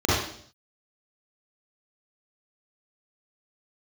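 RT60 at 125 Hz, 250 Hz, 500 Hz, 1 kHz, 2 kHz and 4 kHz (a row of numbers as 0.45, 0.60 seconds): 0.70, 0.70, 0.65, 0.55, 0.55, 0.65 seconds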